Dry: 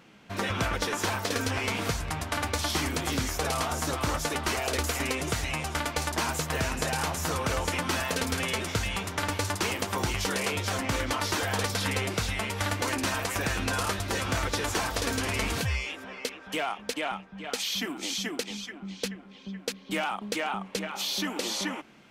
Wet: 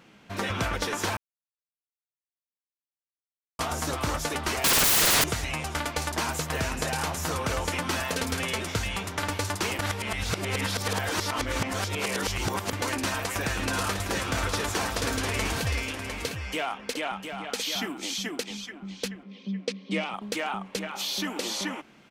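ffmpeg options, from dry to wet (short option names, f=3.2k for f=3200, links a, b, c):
-filter_complex "[0:a]asettb=1/sr,asplit=3[a][b][c];[a]atrim=end=4.644[d];[b]atrim=start=4.64:end=5.24,asetpts=PTS-STARTPTS,afade=t=in:d=0.004:c=qsin,afade=t=out:st=0.596:d=0.004:c=qsin,aeval=exprs='0.126*sin(PI/2*10*val(0)/0.126)':c=same[e];[c]atrim=start=5.236[f];[d][e]acrossfade=d=0.004:c1=hsin:c2=qsin[g];[g][f]acrossfade=d=0.004:c1=qsin:c2=hsin,asplit=3[h][i][j];[h]afade=t=out:st=13.58:d=0.02[k];[i]aecho=1:1:704:0.447,afade=t=in:st=13.58:d=0.02,afade=t=out:st=17.99:d=0.02[l];[j]afade=t=in:st=17.99:d=0.02[m];[k][l][m]amix=inputs=3:normalize=0,asettb=1/sr,asplit=3[n][o][p];[n]atrim=end=19.234[q];[o]atrim=start=19.23:end=20.14,asetpts=PTS-STARTPTS,afade=t=in:d=0.004:c=qsin,afade=t=out:st=0.906:d=0.004:c=qsin,highpass=160,equalizer=f=200:t=q:w=4:g=9,equalizer=f=480:t=q:w=4:g=5,equalizer=f=840:t=q:w=4:g=-7,equalizer=f=1.5k:t=q:w=4:g=-10,equalizer=f=2.2k:t=q:w=4:g=3,equalizer=f=7k:t=q:w=4:g=-7,lowpass=f=7.6k:w=0.5412,lowpass=f=7.6k:w=1.3066[r];[p]atrim=start=20.136[s];[q][r]acrossfade=d=0.004:c1=hsin:c2=qsin[t];[t][s]acrossfade=d=0.004:c1=qsin:c2=hsin,asplit=5[u][v][w][x][y];[u]atrim=end=1.17,asetpts=PTS-STARTPTS,afade=t=out:st=1.166:d=0.004:c=hsin[z];[v]atrim=start=1.17:end=3.59,asetpts=PTS-STARTPTS,volume=0[aa];[w]atrim=start=3.59:end=9.792,asetpts=PTS-STARTPTS,afade=t=in:d=0.004:c=hsin[ab];[x]atrim=start=9.788:end=12.732,asetpts=PTS-STARTPTS,areverse[ac];[y]atrim=start=12.728[ad];[z][aa][ab]concat=n=3:v=0:a=1[ae];[ae][ac]acrossfade=d=0.004:c1=hsin:c2=hsin[af];[af][ad]acrossfade=d=0.004:c1=hsin:c2=hsin"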